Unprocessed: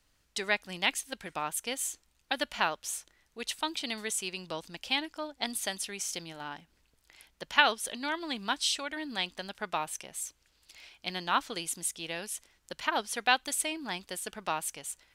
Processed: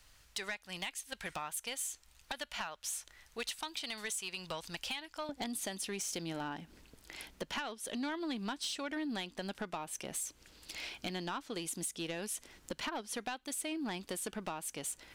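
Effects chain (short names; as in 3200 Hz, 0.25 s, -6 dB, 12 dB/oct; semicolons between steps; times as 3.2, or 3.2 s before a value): bell 270 Hz -8.5 dB 2 oct, from 5.29 s +7.5 dB; compressor 12:1, threshold -43 dBFS, peak gain reduction 27 dB; soft clip -39 dBFS, distortion -14 dB; gain +9 dB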